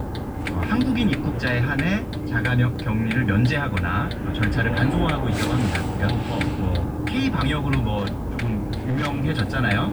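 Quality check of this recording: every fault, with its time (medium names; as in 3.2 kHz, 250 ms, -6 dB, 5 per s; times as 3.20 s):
7.97–9.26 s: clipped -20 dBFS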